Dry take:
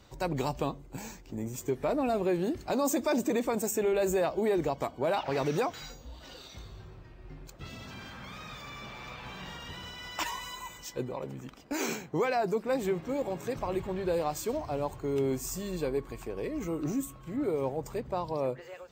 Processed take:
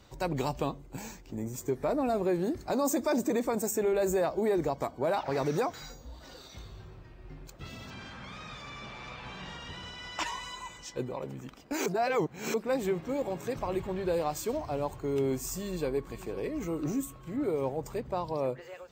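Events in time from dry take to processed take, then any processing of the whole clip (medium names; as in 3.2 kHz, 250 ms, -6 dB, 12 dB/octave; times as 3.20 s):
1.40–6.53 s: peaking EQ 2.9 kHz -8 dB 0.51 oct
7.90–10.96 s: low-pass 8 kHz
11.86–12.54 s: reverse
15.56–16.17 s: echo throw 500 ms, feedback 40%, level -15 dB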